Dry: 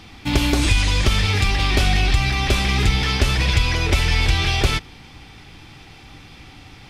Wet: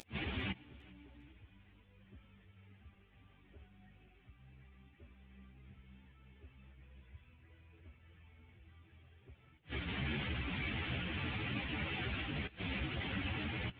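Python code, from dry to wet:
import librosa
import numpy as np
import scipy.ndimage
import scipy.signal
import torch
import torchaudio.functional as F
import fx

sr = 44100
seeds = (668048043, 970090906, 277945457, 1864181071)

p1 = fx.delta_mod(x, sr, bps=16000, step_db=-27.0)
p2 = scipy.signal.sosfilt(scipy.signal.butter(2, 72.0, 'highpass', fs=sr, output='sos'), p1)
p3 = fx.peak_eq(p2, sr, hz=930.0, db=-10.5, octaves=1.9)
p4 = fx.volume_shaper(p3, sr, bpm=98, per_beat=2, depth_db=-8, release_ms=116.0, shape='fast start')
p5 = p3 + (p4 * 10.0 ** (-2.0 / 20.0))
p6 = fx.stretch_vocoder_free(p5, sr, factor=2.0)
p7 = fx.gate_flip(p6, sr, shuts_db=-22.0, range_db=-36)
p8 = fx.doubler(p7, sr, ms=16.0, db=-12.5)
p9 = p8 + fx.echo_feedback(p8, sr, ms=402, feedback_pct=48, wet_db=-22, dry=0)
p10 = fx.ensemble(p9, sr)
y = p10 * 10.0 ** (-2.5 / 20.0)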